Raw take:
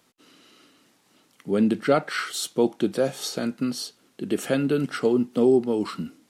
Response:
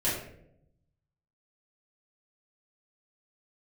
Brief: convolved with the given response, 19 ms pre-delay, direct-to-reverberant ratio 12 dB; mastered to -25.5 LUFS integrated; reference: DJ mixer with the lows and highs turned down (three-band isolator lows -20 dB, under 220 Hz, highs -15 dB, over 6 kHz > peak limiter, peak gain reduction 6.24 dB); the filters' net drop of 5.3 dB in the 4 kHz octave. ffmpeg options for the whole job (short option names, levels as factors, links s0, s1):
-filter_complex "[0:a]equalizer=f=4000:t=o:g=-5,asplit=2[s0][s1];[1:a]atrim=start_sample=2205,adelay=19[s2];[s1][s2]afir=irnorm=-1:irlink=0,volume=0.0841[s3];[s0][s3]amix=inputs=2:normalize=0,acrossover=split=220 6000:gain=0.1 1 0.178[s4][s5][s6];[s4][s5][s6]amix=inputs=3:normalize=0,volume=1.33,alimiter=limit=0.211:level=0:latency=1"